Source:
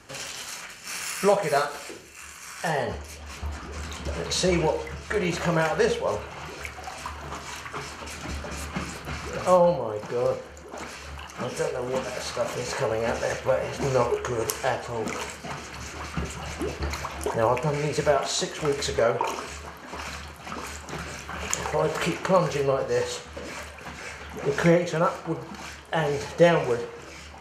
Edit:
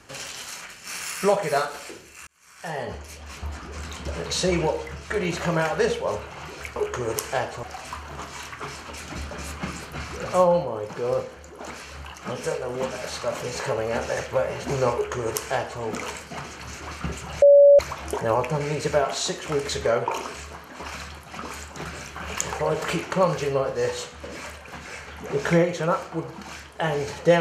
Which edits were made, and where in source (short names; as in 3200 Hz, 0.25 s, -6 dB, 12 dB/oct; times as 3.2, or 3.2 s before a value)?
2.27–3.1 fade in
14.07–14.94 copy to 6.76
16.55–16.92 bleep 569 Hz -8.5 dBFS